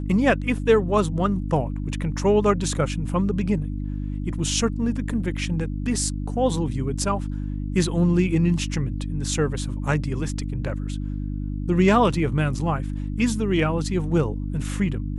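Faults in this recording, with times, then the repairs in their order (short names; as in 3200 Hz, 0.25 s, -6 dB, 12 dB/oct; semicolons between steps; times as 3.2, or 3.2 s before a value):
hum 50 Hz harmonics 6 -28 dBFS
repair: de-hum 50 Hz, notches 6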